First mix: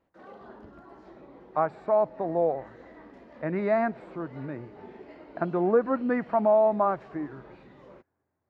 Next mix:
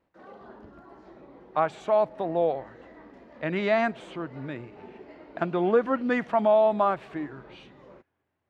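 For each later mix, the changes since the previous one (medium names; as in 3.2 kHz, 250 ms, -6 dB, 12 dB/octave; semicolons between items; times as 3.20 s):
speech: remove boxcar filter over 14 samples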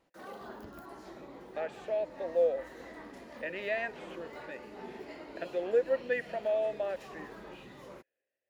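speech: add vowel filter e; master: remove tape spacing loss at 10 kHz 25 dB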